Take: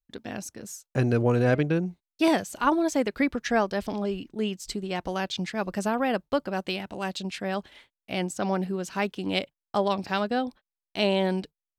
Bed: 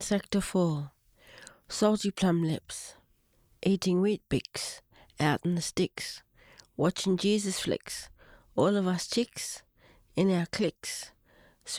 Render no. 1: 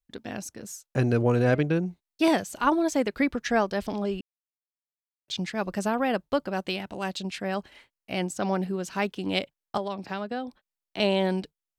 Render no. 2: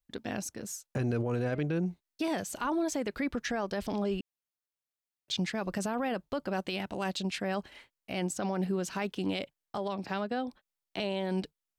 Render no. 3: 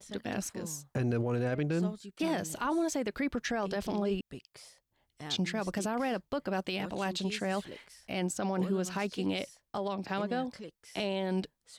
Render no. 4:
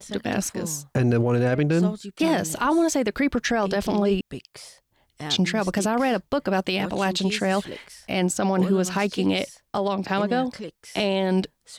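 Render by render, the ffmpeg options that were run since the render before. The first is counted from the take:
-filter_complex "[0:a]asettb=1/sr,asplit=3[s0][s1][s2];[s0]atrim=end=7.424[s3];[s1]atrim=start=7.42:end=8.18,asetpts=PTS-STARTPTS,afade=t=in:d=0.004:c=qsin,afade=t=out:st=0.756:d=0.004:c=qsin,bandreject=f=3500:w=7.1[s4];[s2]atrim=start=8.176[s5];[s3][s4]acrossfade=d=0.004:c1=hsin:c2=qsin[s6];[s6][s5]acrossfade=d=0.004:c1=qsin:c2=hsin,asettb=1/sr,asplit=3[s7][s8][s9];[s7]atrim=end=9.774[s10];[s8]atrim=start=9.77:end=11,asetpts=PTS-STARTPTS,afade=t=in:d=0.004:c=qsin,afade=t=out:st=1.226:d=0.004:c=qsin,acrossover=split=130|540|3200[s11][s12][s13][s14];[s11]acompressor=threshold=0.001:ratio=3[s15];[s12]acompressor=threshold=0.02:ratio=3[s16];[s13]acompressor=threshold=0.0178:ratio=3[s17];[s14]acompressor=threshold=0.002:ratio=3[s18];[s15][s16][s17][s18]amix=inputs=4:normalize=0[s19];[s9]atrim=start=10.996[s20];[s10][s19]acrossfade=d=0.004:c1=hsin:c2=qsin[s21];[s21][s20]acrossfade=d=0.004:c1=qsin:c2=hsin,asplit=3[s22][s23][s24];[s22]atrim=end=4.21,asetpts=PTS-STARTPTS,afade=t=out:st=4.206:d=0.004:c=hsin[s25];[s23]atrim=start=4.21:end=5.28,asetpts=PTS-STARTPTS,volume=0[s26];[s24]atrim=start=5.28,asetpts=PTS-STARTPTS,afade=t=in:d=0.004:c=hsin[s27];[s25][s26][s27]concat=n=3:v=0:a=1"
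-af "acompressor=threshold=0.0708:ratio=6,alimiter=limit=0.0668:level=0:latency=1:release=25"
-filter_complex "[1:a]volume=0.141[s0];[0:a][s0]amix=inputs=2:normalize=0"
-af "volume=3.16"

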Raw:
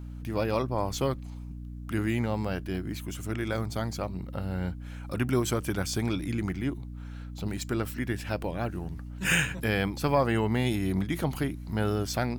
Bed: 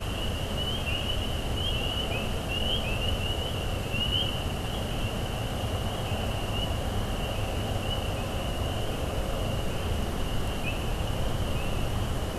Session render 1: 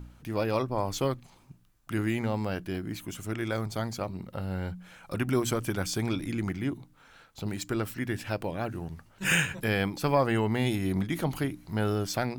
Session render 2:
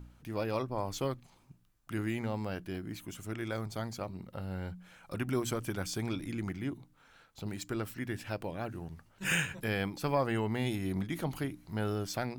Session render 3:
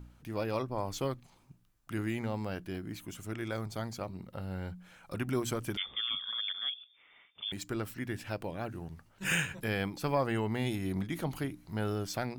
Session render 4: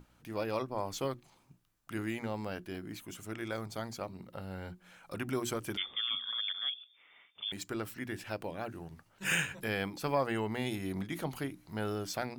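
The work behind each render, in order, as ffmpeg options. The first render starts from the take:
-af "bandreject=f=60:t=h:w=4,bandreject=f=120:t=h:w=4,bandreject=f=180:t=h:w=4,bandreject=f=240:t=h:w=4,bandreject=f=300:t=h:w=4"
-af "volume=0.531"
-filter_complex "[0:a]asettb=1/sr,asplit=3[s0][s1][s2];[s0]atrim=end=5.774[s3];[s1]atrim=start=5.77:end=7.52,asetpts=PTS-STARTPTS,afade=t=in:d=0.004:c=qsin,afade=t=out:st=1.746:d=0.004:c=qsin,lowpass=f=3100:t=q:w=0.5098,lowpass=f=3100:t=q:w=0.6013,lowpass=f=3100:t=q:w=0.9,lowpass=f=3100:t=q:w=2.563,afreqshift=-3600[s4];[s2]atrim=start=7.516[s5];[s3][s4]acrossfade=d=0.004:c1=hsin:c2=qsin[s6];[s6][s5]acrossfade=d=0.004:c1=qsin:c2=hsin"
-af "lowshelf=f=130:g=-8.5,bandreject=f=60:t=h:w=6,bandreject=f=120:t=h:w=6,bandreject=f=180:t=h:w=6,bandreject=f=240:t=h:w=6,bandreject=f=300:t=h:w=6,bandreject=f=360:t=h:w=6"

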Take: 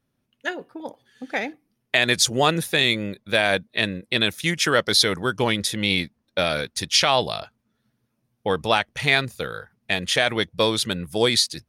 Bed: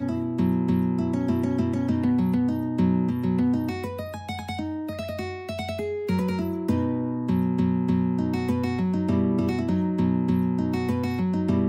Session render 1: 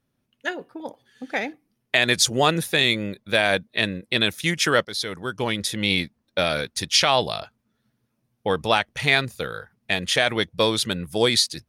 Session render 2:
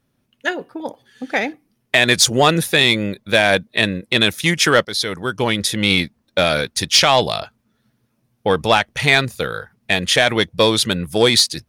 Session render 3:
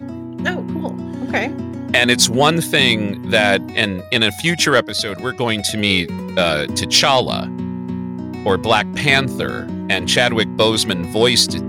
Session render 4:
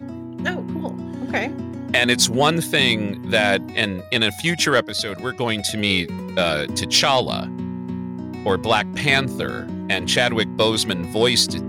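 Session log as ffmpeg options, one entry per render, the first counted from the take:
-filter_complex "[0:a]asplit=2[s0][s1];[s0]atrim=end=4.85,asetpts=PTS-STARTPTS,afade=t=out:st=4.846:d=0.004:c=hsin:silence=0.199526[s2];[s1]atrim=start=4.85,asetpts=PTS-STARTPTS,afade=t=in:d=1.04:silence=0.199526[s3];[s2][s3]concat=n=2:v=0:a=1"
-af "acontrast=73"
-filter_complex "[1:a]volume=0.794[s0];[0:a][s0]amix=inputs=2:normalize=0"
-af "volume=0.668"

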